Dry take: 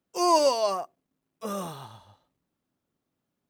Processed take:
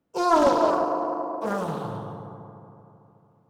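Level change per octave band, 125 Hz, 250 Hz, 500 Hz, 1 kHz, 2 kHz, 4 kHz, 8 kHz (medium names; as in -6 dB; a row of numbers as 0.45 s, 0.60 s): +9.0 dB, +7.0 dB, +3.0 dB, +4.0 dB, +8.0 dB, -6.0 dB, -7.5 dB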